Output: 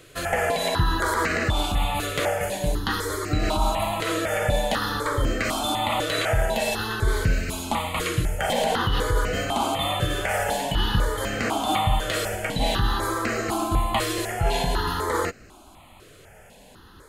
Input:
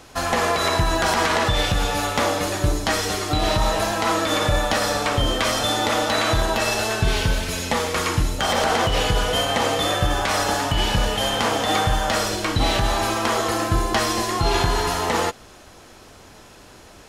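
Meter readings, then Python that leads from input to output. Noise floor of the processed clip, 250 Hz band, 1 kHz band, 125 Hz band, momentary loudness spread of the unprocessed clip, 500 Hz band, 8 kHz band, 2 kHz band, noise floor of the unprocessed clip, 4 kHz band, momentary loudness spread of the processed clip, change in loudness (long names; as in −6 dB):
−50 dBFS, −3.5 dB, −4.0 dB, −2.5 dB, 3 LU, −3.5 dB, −6.0 dB, −3.5 dB, −46 dBFS, −6.0 dB, 3 LU, −4.0 dB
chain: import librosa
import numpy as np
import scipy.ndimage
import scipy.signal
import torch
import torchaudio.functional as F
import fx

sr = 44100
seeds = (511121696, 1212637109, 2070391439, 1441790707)

y = fx.peak_eq(x, sr, hz=5500.0, db=-12.0, octaves=0.45)
y = fx.phaser_held(y, sr, hz=4.0, low_hz=230.0, high_hz=3400.0)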